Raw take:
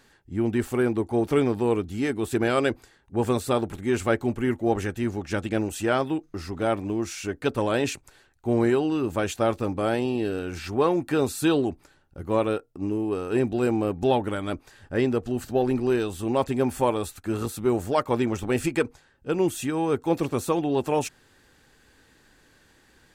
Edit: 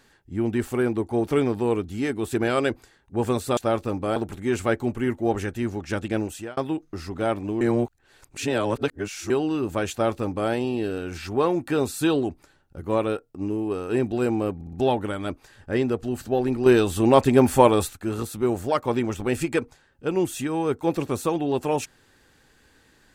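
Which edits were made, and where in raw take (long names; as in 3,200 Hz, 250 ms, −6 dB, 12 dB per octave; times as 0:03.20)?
0:05.64–0:05.98: fade out
0:07.02–0:08.71: reverse
0:09.32–0:09.91: duplicate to 0:03.57
0:13.96: stutter 0.06 s, 4 plays
0:15.89–0:17.16: clip gain +7.5 dB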